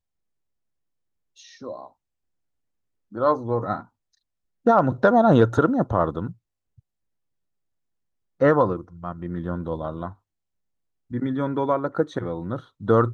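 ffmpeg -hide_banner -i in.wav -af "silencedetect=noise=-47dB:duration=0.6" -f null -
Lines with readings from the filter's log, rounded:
silence_start: 0.00
silence_end: 1.38 | silence_duration: 1.38
silence_start: 1.88
silence_end: 3.12 | silence_duration: 1.24
silence_start: 3.87
silence_end: 4.66 | silence_duration: 0.79
silence_start: 6.79
silence_end: 8.40 | silence_duration: 1.61
silence_start: 10.15
silence_end: 11.11 | silence_duration: 0.96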